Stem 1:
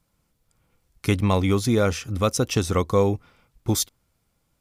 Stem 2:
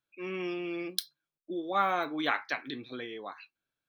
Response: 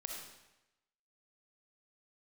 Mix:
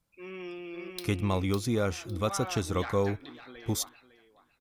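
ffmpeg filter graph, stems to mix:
-filter_complex "[0:a]volume=-8dB,asplit=2[a][b];[1:a]asoftclip=type=tanh:threshold=-19.5dB,volume=-5.5dB,asplit=2[c][d];[d]volume=-3dB[e];[b]apad=whole_len=171452[f];[c][f]sidechaincompress=threshold=-45dB:ratio=8:attack=16:release=284[g];[e]aecho=0:1:555|1110|1665|2220:1|0.23|0.0529|0.0122[h];[a][g][h]amix=inputs=3:normalize=0"

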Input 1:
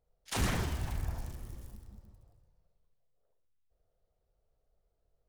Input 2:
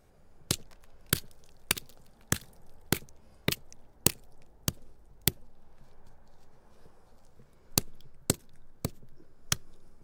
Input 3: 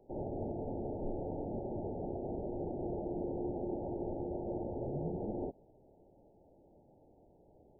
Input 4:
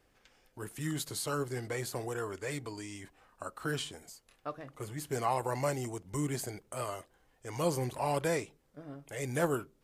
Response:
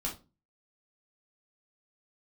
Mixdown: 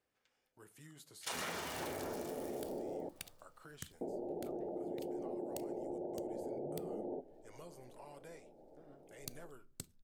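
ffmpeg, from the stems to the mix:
-filter_complex "[0:a]dynaudnorm=f=110:g=9:m=14dB,highpass=390,adelay=950,volume=-7.5dB,asplit=2[a][b];[b]volume=-3.5dB[c];[1:a]equalizer=f=660:t=o:w=2.2:g=-9,adelay=1500,volume=-18.5dB,asplit=2[d][e];[e]volume=-19dB[f];[2:a]highpass=340,tiltshelf=f=790:g=6,adelay=1700,volume=2.5dB,asplit=3[g][h][i];[g]atrim=end=3.09,asetpts=PTS-STARTPTS,afade=t=out:st=3.086:d=0.004:c=hsin[j];[h]atrim=start=3.09:end=4.01,asetpts=PTS-STARTPTS,volume=0[k];[i]atrim=start=4.01,asetpts=PTS-STARTPTS,afade=t=in:d=0.004:c=hsin[l];[j][k][l]concat=n=3:v=0:a=1,asplit=2[m][n];[n]volume=-17.5dB[o];[3:a]highpass=f=170:p=1,acompressor=threshold=-40dB:ratio=3,volume=-15dB,asplit=2[p][q];[q]volume=-15.5dB[r];[4:a]atrim=start_sample=2205[s];[c][f][o][r]amix=inputs=4:normalize=0[t];[t][s]afir=irnorm=-1:irlink=0[u];[a][d][m][p][u]amix=inputs=5:normalize=0,acompressor=threshold=-39dB:ratio=6"

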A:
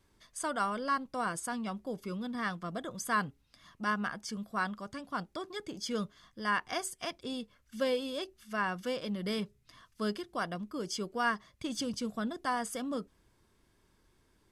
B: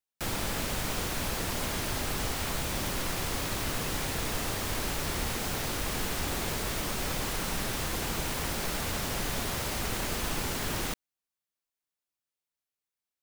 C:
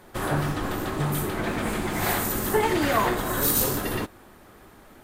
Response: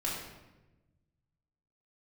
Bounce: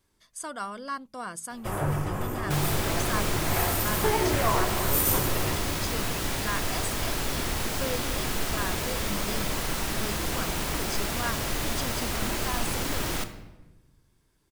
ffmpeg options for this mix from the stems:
-filter_complex "[0:a]highshelf=f=5.9k:g=7.5,bandreject=f=53.97:t=h:w=4,bandreject=f=107.94:t=h:w=4,bandreject=f=161.91:t=h:w=4,bandreject=f=215.88:t=h:w=4,volume=-3dB[a];[1:a]adelay=2300,volume=0dB,asplit=2[b][c];[c]volume=-10.5dB[d];[2:a]equalizer=f=100:t=o:w=0.67:g=5,equalizer=f=250:t=o:w=0.67:g=-11,equalizer=f=1.6k:t=o:w=0.67:g=-5,equalizer=f=4k:t=o:w=0.67:g=-12,adelay=1500,volume=-3.5dB,asplit=2[e][f];[f]volume=-11dB[g];[3:a]atrim=start_sample=2205[h];[d][g]amix=inputs=2:normalize=0[i];[i][h]afir=irnorm=-1:irlink=0[j];[a][b][e][j]amix=inputs=4:normalize=0"

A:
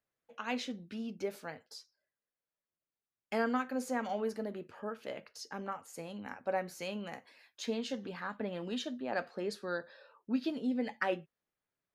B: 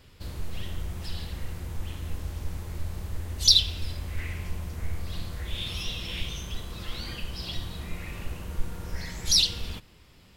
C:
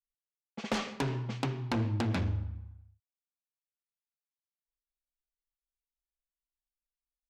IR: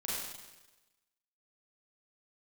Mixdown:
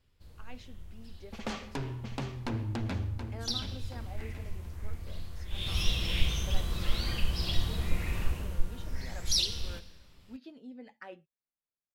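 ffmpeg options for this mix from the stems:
-filter_complex "[0:a]volume=-14dB[a];[1:a]afade=t=in:st=3.38:d=0.64:silence=0.375837,afade=t=in:st=5.49:d=0.31:silence=0.251189,afade=t=out:st=8.17:d=0.46:silence=0.398107,asplit=2[b][c];[c]volume=-13dB[d];[2:a]adelay=750,volume=-5dB,asplit=2[e][f];[f]volume=-8.5dB[g];[3:a]atrim=start_sample=2205[h];[d][h]afir=irnorm=-1:irlink=0[i];[g]aecho=0:1:727|1454|2181|2908|3635|4362:1|0.41|0.168|0.0689|0.0283|0.0116[j];[a][b][e][i][j]amix=inputs=5:normalize=0,lowshelf=f=65:g=8"

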